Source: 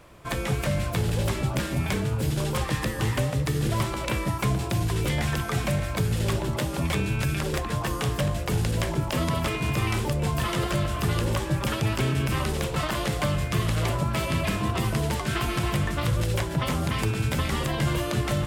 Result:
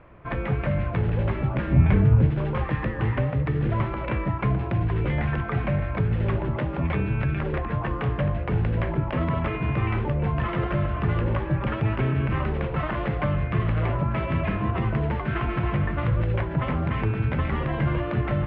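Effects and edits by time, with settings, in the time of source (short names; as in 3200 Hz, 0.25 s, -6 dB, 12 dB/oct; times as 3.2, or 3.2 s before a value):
1.67–2.27 low shelf 220 Hz +11 dB
whole clip: inverse Chebyshev low-pass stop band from 9100 Hz, stop band 70 dB; low shelf 140 Hz +3 dB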